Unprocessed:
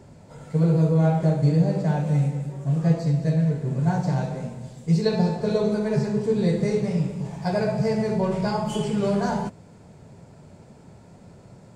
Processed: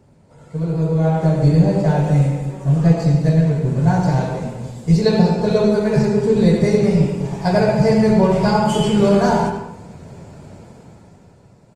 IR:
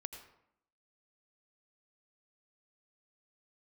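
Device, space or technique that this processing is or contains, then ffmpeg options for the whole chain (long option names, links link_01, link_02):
speakerphone in a meeting room: -filter_complex "[1:a]atrim=start_sample=2205[link_01];[0:a][link_01]afir=irnorm=-1:irlink=0,asplit=2[link_02][link_03];[link_03]adelay=90,highpass=300,lowpass=3400,asoftclip=type=hard:threshold=-20.5dB,volume=-10dB[link_04];[link_02][link_04]amix=inputs=2:normalize=0,dynaudnorm=framelen=110:gausssize=21:maxgain=14dB" -ar 48000 -c:a libopus -b:a 24k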